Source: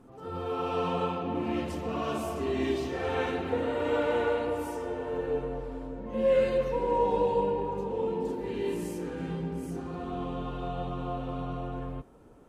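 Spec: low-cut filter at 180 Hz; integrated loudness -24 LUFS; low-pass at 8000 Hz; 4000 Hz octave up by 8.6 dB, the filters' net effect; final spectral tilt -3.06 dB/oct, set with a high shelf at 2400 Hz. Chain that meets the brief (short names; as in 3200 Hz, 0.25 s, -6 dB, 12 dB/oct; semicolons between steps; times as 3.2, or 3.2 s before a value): HPF 180 Hz; LPF 8000 Hz; high shelf 2400 Hz +4.5 dB; bell 4000 Hz +8 dB; gain +6.5 dB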